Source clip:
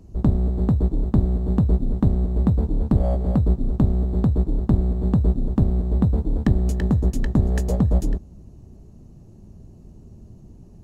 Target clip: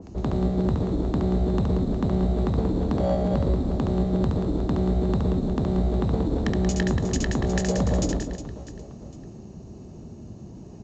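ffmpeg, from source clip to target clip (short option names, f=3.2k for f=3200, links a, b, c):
-filter_complex "[0:a]highpass=50,lowshelf=f=150:g=-10,acrossover=split=350[a][b];[a]acompressor=threshold=-23dB:ratio=6[c];[c][b]amix=inputs=2:normalize=0,alimiter=limit=-22dB:level=0:latency=1,acompressor=mode=upward:threshold=-42dB:ratio=2.5,aecho=1:1:70|182|361.2|647.9|1107:0.631|0.398|0.251|0.158|0.1,aresample=16000,aresample=44100,adynamicequalizer=threshold=0.00224:dfrequency=1700:dqfactor=0.7:tfrequency=1700:tqfactor=0.7:attack=5:release=100:ratio=0.375:range=3:mode=boostabove:tftype=highshelf,volume=5dB"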